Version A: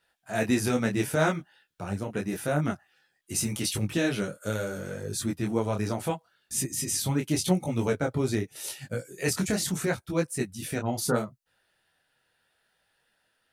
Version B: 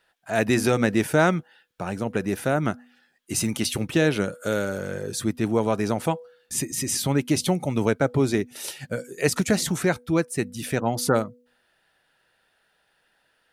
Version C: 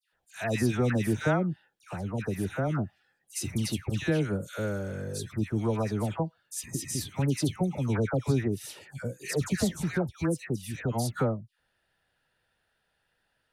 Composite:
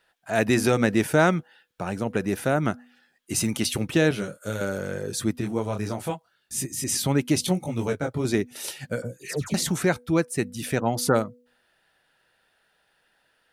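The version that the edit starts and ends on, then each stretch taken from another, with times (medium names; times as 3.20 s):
B
4.11–4.61 s: from A
5.41–6.84 s: from A
7.47–8.25 s: from A
9.02–9.54 s: from C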